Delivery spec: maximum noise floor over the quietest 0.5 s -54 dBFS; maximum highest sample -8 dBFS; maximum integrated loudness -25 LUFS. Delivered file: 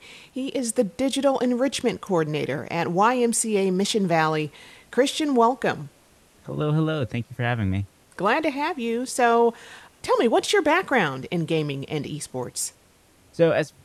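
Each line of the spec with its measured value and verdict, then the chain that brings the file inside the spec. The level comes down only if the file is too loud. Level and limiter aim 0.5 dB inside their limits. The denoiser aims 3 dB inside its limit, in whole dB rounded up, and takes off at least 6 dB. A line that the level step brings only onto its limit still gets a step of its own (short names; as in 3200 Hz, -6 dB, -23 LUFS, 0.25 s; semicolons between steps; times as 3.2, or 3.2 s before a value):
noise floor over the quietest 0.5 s -57 dBFS: OK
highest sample -7.0 dBFS: fail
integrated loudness -23.5 LUFS: fail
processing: gain -2 dB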